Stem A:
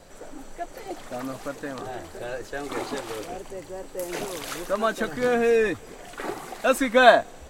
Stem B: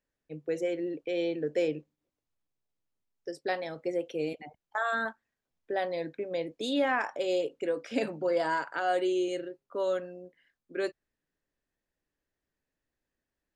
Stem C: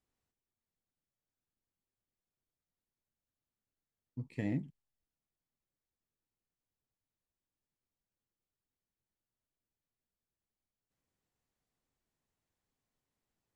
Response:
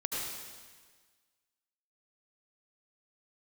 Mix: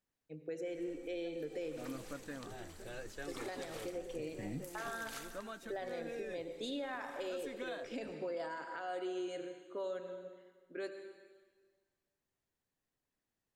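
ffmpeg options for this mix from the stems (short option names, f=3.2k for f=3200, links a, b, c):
-filter_complex "[0:a]equalizer=f=750:t=o:w=1.9:g=-8,adelay=650,volume=-8.5dB,afade=t=in:st=1.43:d=0.41:silence=0.354813,afade=t=out:st=5.14:d=0.37:silence=0.316228[a];[1:a]volume=-9.5dB,asplit=3[b][c][d];[c]volume=-10dB[e];[2:a]highpass=f=83:w=0.5412,highpass=f=83:w=1.3066,volume=-3.5dB[f];[d]apad=whole_len=597579[g];[f][g]sidechaincompress=threshold=-43dB:ratio=8:attack=16:release=707[h];[3:a]atrim=start_sample=2205[i];[e][i]afir=irnorm=-1:irlink=0[j];[a][b][h][j]amix=inputs=4:normalize=0,alimiter=level_in=8.5dB:limit=-24dB:level=0:latency=1:release=200,volume=-8.5dB"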